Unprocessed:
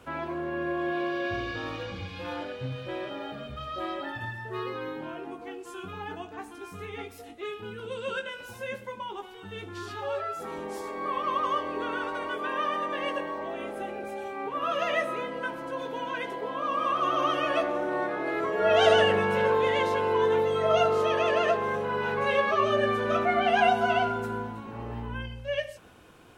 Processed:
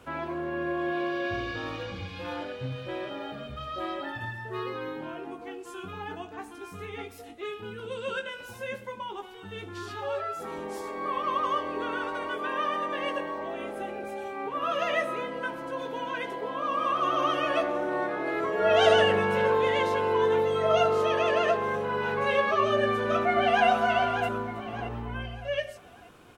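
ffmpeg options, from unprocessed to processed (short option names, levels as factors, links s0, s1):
-filter_complex "[0:a]asplit=2[s0][s1];[s1]afade=t=in:st=22.76:d=0.01,afade=t=out:st=23.68:d=0.01,aecho=0:1:600|1200|1800|2400|3000:0.421697|0.168679|0.0674714|0.0269886|0.0107954[s2];[s0][s2]amix=inputs=2:normalize=0"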